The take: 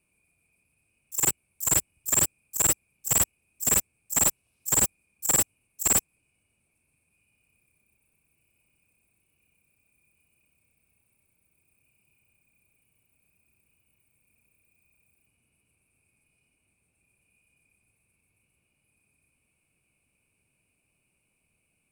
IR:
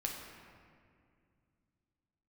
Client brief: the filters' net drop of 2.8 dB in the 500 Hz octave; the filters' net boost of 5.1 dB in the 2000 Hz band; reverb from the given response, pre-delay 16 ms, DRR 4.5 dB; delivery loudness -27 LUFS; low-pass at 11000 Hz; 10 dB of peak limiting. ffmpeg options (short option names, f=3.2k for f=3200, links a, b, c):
-filter_complex "[0:a]lowpass=11k,equalizer=f=500:t=o:g=-4,equalizer=f=2k:t=o:g=6.5,alimiter=limit=-21dB:level=0:latency=1,asplit=2[a][b];[1:a]atrim=start_sample=2205,adelay=16[c];[b][c]afir=irnorm=-1:irlink=0,volume=-6dB[d];[a][d]amix=inputs=2:normalize=0,volume=4dB"